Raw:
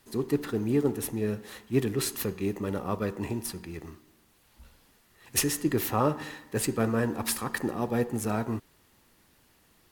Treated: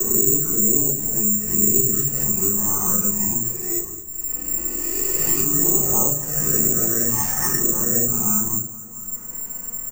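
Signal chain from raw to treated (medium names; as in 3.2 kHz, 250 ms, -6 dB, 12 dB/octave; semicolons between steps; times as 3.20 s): reverse spectral sustain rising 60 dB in 2.10 s; transient shaper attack +5 dB, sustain -9 dB; Gaussian low-pass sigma 2.9 samples; bass shelf 320 Hz +3.5 dB; comb 5.6 ms, depth 34%; touch-sensitive flanger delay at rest 4.3 ms, full sweep at -16.5 dBFS; simulated room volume 120 m³, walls furnished, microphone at 3.4 m; careless resampling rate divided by 6×, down filtered, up zero stuff; on a send: feedback delay 218 ms, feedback 51%, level -22 dB; on the sum: three bands compressed up and down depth 70%; trim -11.5 dB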